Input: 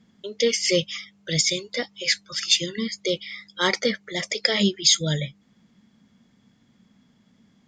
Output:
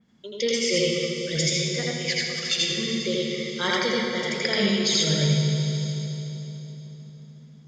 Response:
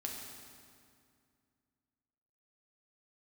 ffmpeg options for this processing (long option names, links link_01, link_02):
-filter_complex "[0:a]asplit=2[link_01][link_02];[1:a]atrim=start_sample=2205,asetrate=25137,aresample=44100,adelay=82[link_03];[link_02][link_03]afir=irnorm=-1:irlink=0,volume=0.5dB[link_04];[link_01][link_04]amix=inputs=2:normalize=0,adynamicequalizer=threshold=0.0355:dfrequency=3900:dqfactor=0.7:tfrequency=3900:tqfactor=0.7:attack=5:release=100:ratio=0.375:range=2.5:mode=cutabove:tftype=highshelf,volume=-5dB"